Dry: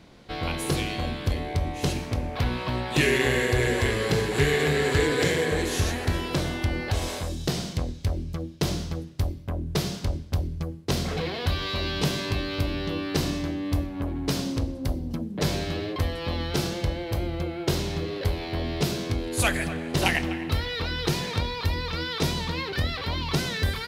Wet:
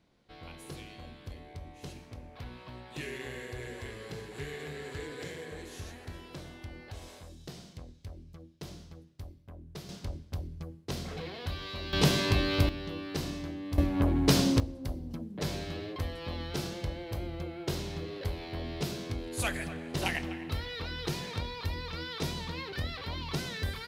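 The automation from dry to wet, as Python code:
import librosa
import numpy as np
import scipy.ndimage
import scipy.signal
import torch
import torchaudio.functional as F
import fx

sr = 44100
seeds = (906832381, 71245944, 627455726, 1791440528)

y = fx.gain(x, sr, db=fx.steps((0.0, -18.0), (9.89, -10.5), (11.93, 1.0), (12.69, -9.0), (13.78, 3.5), (14.6, -8.5)))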